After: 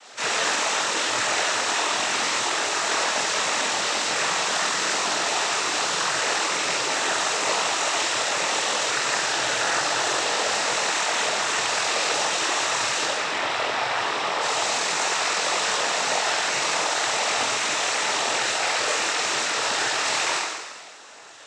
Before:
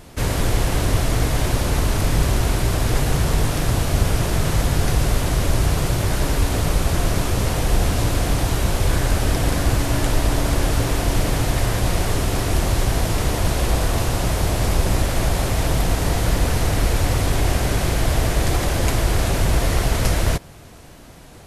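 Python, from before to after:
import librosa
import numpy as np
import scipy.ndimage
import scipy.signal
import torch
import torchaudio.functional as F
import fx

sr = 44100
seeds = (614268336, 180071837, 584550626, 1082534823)

p1 = scipy.signal.sosfilt(scipy.signal.butter(2, 860.0, 'highpass', fs=sr, output='sos'), x)
p2 = fx.rider(p1, sr, range_db=10, speed_s=0.5)
p3 = fx.lowpass(p2, sr, hz=3500.0, slope=12, at=(13.04, 14.41))
p4 = p3 + fx.room_flutter(p3, sr, wall_m=4.0, rt60_s=1.4, dry=0)
y = fx.noise_vocoder(p4, sr, seeds[0], bands=12)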